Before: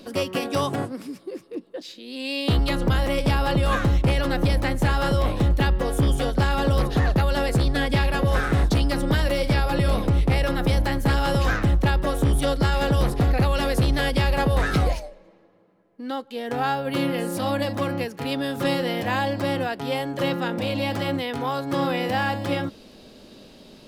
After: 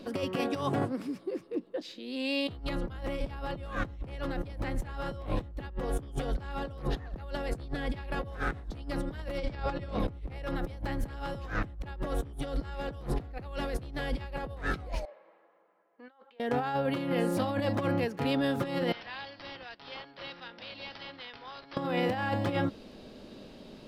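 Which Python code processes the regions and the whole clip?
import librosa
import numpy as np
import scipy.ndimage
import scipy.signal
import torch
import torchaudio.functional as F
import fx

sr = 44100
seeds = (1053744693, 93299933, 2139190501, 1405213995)

y = fx.chain(x, sr, fx.lowpass(hz=7900.0, slope=24),
    fx.hum_notches(base_hz=50, count=2), at=(9.38, 10.0))
y = fx.chain(y, sr, fx.highpass(hz=970.0, slope=12),
    fx.over_compress(threshold_db=-50.0, ratio=-1.0),
    fx.spacing_loss(db_at_10k=38), at=(15.05, 16.4))
y = fx.chain(y, sr, fx.pre_emphasis(coefficient=0.97),
    fx.resample_bad(factor=4, down='none', up='filtered'), at=(18.92, 21.77))
y = fx.high_shelf(y, sr, hz=4400.0, db=-10.5)
y = fx.over_compress(y, sr, threshold_db=-26.0, ratio=-0.5)
y = y * 10.0 ** (-6.0 / 20.0)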